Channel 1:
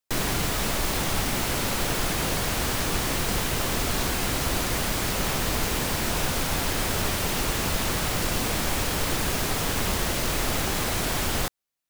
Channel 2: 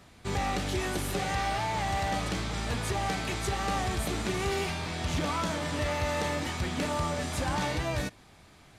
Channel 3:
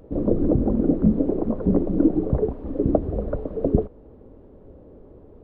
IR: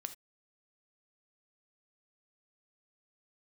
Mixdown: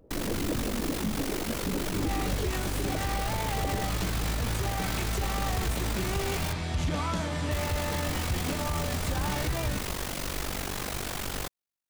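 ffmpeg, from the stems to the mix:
-filter_complex "[0:a]aeval=exprs='val(0)*sin(2*PI*24*n/s)':channel_layout=same,volume=-4.5dB,asplit=3[link_01][link_02][link_03];[link_01]atrim=end=6.53,asetpts=PTS-STARTPTS,afade=type=out:start_time=6.526:duration=0.004:curve=hsin[link_04];[link_02]atrim=start=6.53:end=7.51,asetpts=PTS-STARTPTS,volume=0[link_05];[link_03]atrim=start=7.51,asetpts=PTS-STARTPTS,afade=type=in:duration=0.004:curve=hsin[link_06];[link_04][link_05][link_06]concat=n=3:v=0:a=1[link_07];[1:a]lowshelf=frequency=110:gain=11.5,adelay=1700,volume=-1.5dB[link_08];[2:a]volume=-10dB[link_09];[link_07][link_08][link_09]amix=inputs=3:normalize=0,alimiter=limit=-20.5dB:level=0:latency=1:release=31"

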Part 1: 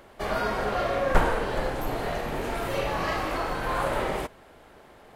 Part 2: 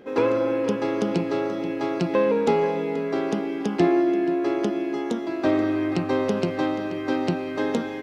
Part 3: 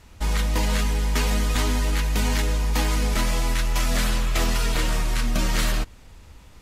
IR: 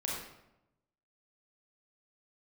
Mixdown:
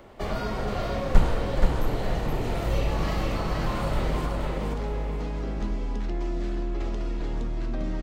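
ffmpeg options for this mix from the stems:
-filter_complex "[0:a]lowshelf=frequency=490:gain=6.5,bandreject=frequency=1600:width=14,volume=-0.5dB,asplit=2[link_01][link_02];[link_02]volume=-4dB[link_03];[1:a]alimiter=limit=-15.5dB:level=0:latency=1,adelay=2300,volume=-12dB[link_04];[2:a]lowpass=3400,equalizer=frequency=2200:width_type=o:width=2.9:gain=-14,acompressor=threshold=-35dB:ratio=2.5,adelay=2450,volume=1.5dB,asplit=2[link_05][link_06];[link_06]volume=-9.5dB[link_07];[3:a]atrim=start_sample=2205[link_08];[link_07][link_08]afir=irnorm=-1:irlink=0[link_09];[link_03]aecho=0:1:474|948|1422|1896|2370:1|0.33|0.109|0.0359|0.0119[link_10];[link_01][link_04][link_05][link_09][link_10]amix=inputs=5:normalize=0,acrossover=split=210|3000[link_11][link_12][link_13];[link_12]acompressor=threshold=-33dB:ratio=2.5[link_14];[link_11][link_14][link_13]amix=inputs=3:normalize=0,equalizer=frequency=11000:width=1.7:gain=-10"

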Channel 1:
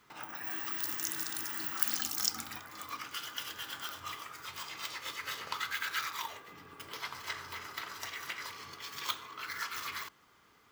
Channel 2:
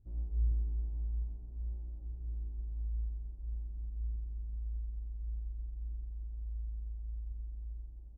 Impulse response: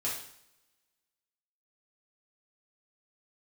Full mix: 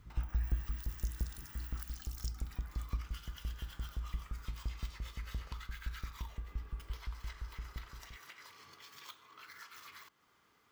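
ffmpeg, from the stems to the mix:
-filter_complex "[0:a]acompressor=threshold=-50dB:ratio=2,volume=-6dB[link_01];[1:a]equalizer=frequency=130:width_type=o:width=2.8:gain=12.5,aeval=exprs='val(0)*pow(10,-25*if(lt(mod(5.8*n/s,1),2*abs(5.8)/1000),1-mod(5.8*n/s,1)/(2*abs(5.8)/1000),(mod(5.8*n/s,1)-2*abs(5.8)/1000)/(1-2*abs(5.8)/1000))/20)':channel_layout=same,volume=-2.5dB,asplit=2[link_02][link_03];[link_03]volume=-10.5dB[link_04];[2:a]atrim=start_sample=2205[link_05];[link_04][link_05]afir=irnorm=-1:irlink=0[link_06];[link_01][link_02][link_06]amix=inputs=3:normalize=0"

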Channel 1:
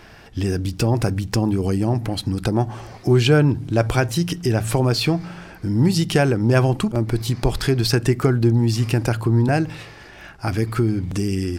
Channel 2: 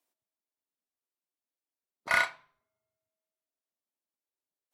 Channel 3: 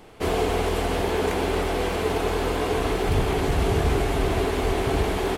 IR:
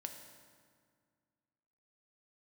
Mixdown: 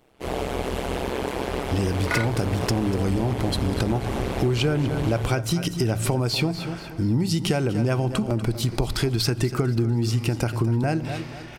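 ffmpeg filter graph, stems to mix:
-filter_complex "[0:a]bandreject=frequency=1700:width=11,adelay=1350,volume=-1dB,asplit=3[link_01][link_02][link_03];[link_02]volume=-11dB[link_04];[link_03]volume=-12dB[link_05];[1:a]volume=3dB[link_06];[2:a]dynaudnorm=framelen=150:gausssize=3:maxgain=11.5dB,tremolo=f=130:d=1,volume=-9dB[link_07];[3:a]atrim=start_sample=2205[link_08];[link_04][link_08]afir=irnorm=-1:irlink=0[link_09];[link_05]aecho=0:1:242|484|726|968|1210:1|0.35|0.122|0.0429|0.015[link_10];[link_01][link_06][link_07][link_09][link_10]amix=inputs=5:normalize=0,acompressor=threshold=-19dB:ratio=6"

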